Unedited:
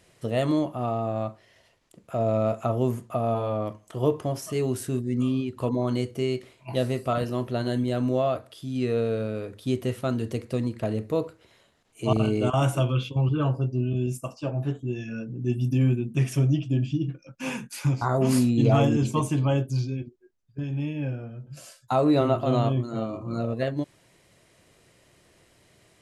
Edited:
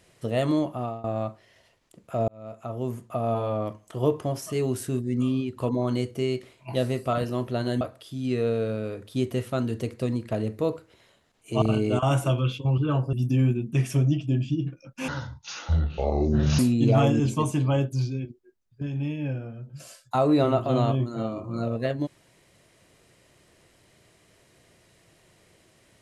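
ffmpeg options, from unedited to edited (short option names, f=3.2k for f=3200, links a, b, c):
-filter_complex "[0:a]asplit=7[a][b][c][d][e][f][g];[a]atrim=end=1.04,asetpts=PTS-STARTPTS,afade=t=out:st=0.77:d=0.27:silence=0.112202[h];[b]atrim=start=1.04:end=2.28,asetpts=PTS-STARTPTS,afade=t=in:d=0.004:c=hsin:silence=0.112202,afade=t=out:st=1.236:d=0.004:c=hsin[i];[c]atrim=start=2.28:end=7.812,asetpts=PTS-STARTPTS,afade=t=in:d=1.08[j];[d]atrim=start=8.318:end=13.642[k];[e]atrim=start=15.548:end=17.504[l];[f]atrim=start=17.5:end=18.36,asetpts=PTS-STARTPTS,asetrate=25137,aresample=44100[m];[g]atrim=start=18.356[n];[h][i][j]concat=n=3:v=0:a=1[o];[o][k]acrossfade=d=0.004:c1=hsin:c2=hsin[p];[p][l]acrossfade=d=0.004:c1=hsin:c2=hsin[q];[q][m]acrossfade=d=0.004:c1=hsin:c2=hsin[r];[r][n]acrossfade=d=0.004:c1=hsin:c2=hsin"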